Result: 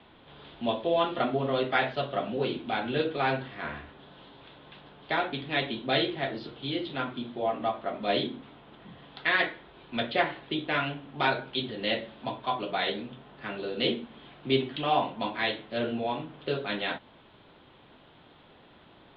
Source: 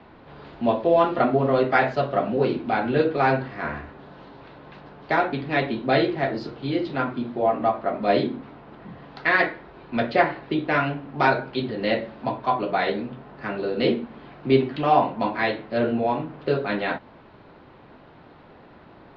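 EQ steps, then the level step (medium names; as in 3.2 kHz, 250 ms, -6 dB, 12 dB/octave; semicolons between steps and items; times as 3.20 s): resonant low-pass 3.4 kHz, resonance Q 5.7; -8.0 dB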